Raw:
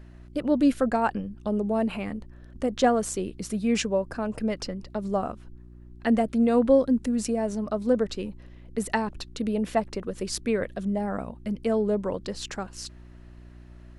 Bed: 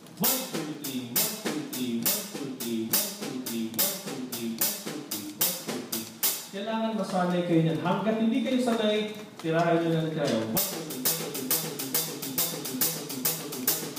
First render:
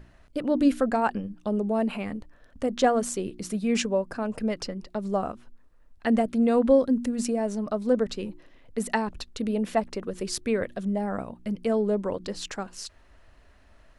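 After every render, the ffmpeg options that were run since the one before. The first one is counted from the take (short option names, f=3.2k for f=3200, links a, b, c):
-af "bandreject=f=60:t=h:w=4,bandreject=f=120:t=h:w=4,bandreject=f=180:t=h:w=4,bandreject=f=240:t=h:w=4,bandreject=f=300:t=h:w=4,bandreject=f=360:t=h:w=4"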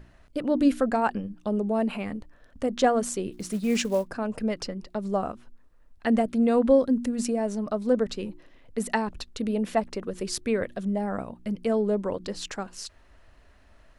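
-filter_complex "[0:a]asplit=3[a][b][c];[a]afade=t=out:st=3.31:d=0.02[d];[b]acrusher=bits=6:mode=log:mix=0:aa=0.000001,afade=t=in:st=3.31:d=0.02,afade=t=out:st=4.06:d=0.02[e];[c]afade=t=in:st=4.06:d=0.02[f];[d][e][f]amix=inputs=3:normalize=0"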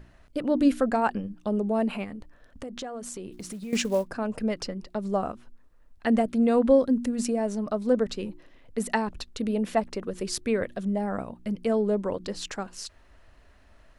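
-filter_complex "[0:a]asettb=1/sr,asplit=3[a][b][c];[a]atrim=end=2.044[d];[b]atrim=start=2.04:end=3.73,asetpts=PTS-STARTPTS,afade=t=in:d=0.004:c=qsin,afade=t=out:st=1.686:d=0.004:c=qsin,acompressor=threshold=-34dB:ratio=6:attack=3.2:release=140:knee=1:detection=peak[e];[c]atrim=start=3.726[f];[d][e]acrossfade=d=0.004:c1=hsin:c2=qsin[g];[g][f]acrossfade=d=0.004:c1=qsin:c2=hsin"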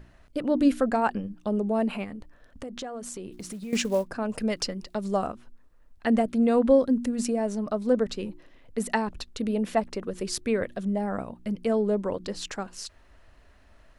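-filter_complex "[0:a]asettb=1/sr,asplit=3[a][b][c];[a]atrim=end=4.294[d];[b]atrim=start=4.29:end=5.27,asetpts=PTS-STARTPTS,afade=t=in:d=0.004:c=qsin,afade=t=out:st=0.976:d=0.004:c=qsin,highshelf=f=2.5k:g=8[e];[c]atrim=start=5.266[f];[d][e]acrossfade=d=0.004:c1=hsin:c2=qsin[g];[g][f]acrossfade=d=0.004:c1=qsin:c2=hsin"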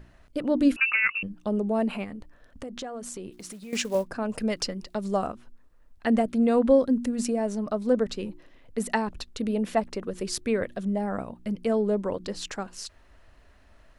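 -filter_complex "[0:a]asettb=1/sr,asplit=3[a][b][c];[a]atrim=end=0.764[d];[b]atrim=start=0.76:end=1.23,asetpts=PTS-STARTPTS,afade=t=in:d=0.004:c=qsin,afade=t=out:st=0.466:d=0.004:c=qsin,lowpass=f=2.5k:t=q:w=0.5098,lowpass=f=2.5k:t=q:w=0.6013,lowpass=f=2.5k:t=q:w=0.9,lowpass=f=2.5k:t=q:w=2.563,afreqshift=-2900[e];[c]atrim=start=1.226[f];[d][e]acrossfade=d=0.004:c1=hsin:c2=qsin[g];[g][f]acrossfade=d=0.004:c1=qsin:c2=hsin,asettb=1/sr,asplit=3[h][i][j];[h]atrim=end=3.304[k];[i]atrim=start=3.3:end=3.95,asetpts=PTS-STARTPTS,afade=t=in:d=0.004:c=qsin,afade=t=out:st=0.646:d=0.004:c=qsin,lowshelf=f=300:g=-8.5[l];[j]atrim=start=3.946[m];[k][l]acrossfade=d=0.004:c1=hsin:c2=qsin[n];[n][m]acrossfade=d=0.004:c1=qsin:c2=hsin"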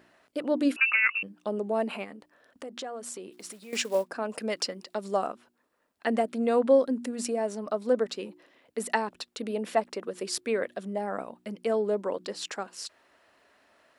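-af "highpass=330,bandreject=f=6.3k:w=19"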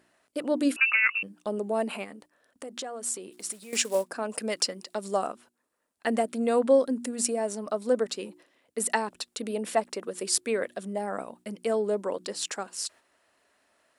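-af "agate=range=-6dB:threshold=-53dB:ratio=16:detection=peak,equalizer=f=9.1k:t=o:w=1.1:g=10.5"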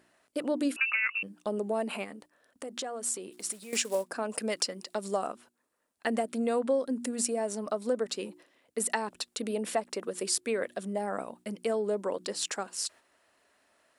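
-af "acompressor=threshold=-27dB:ratio=2.5"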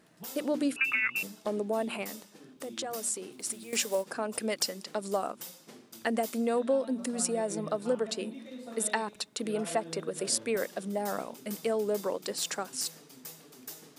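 -filter_complex "[1:a]volume=-18dB[a];[0:a][a]amix=inputs=2:normalize=0"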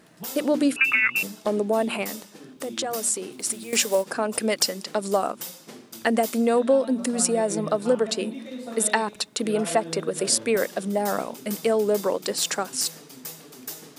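-af "volume=8dB,alimiter=limit=-2dB:level=0:latency=1"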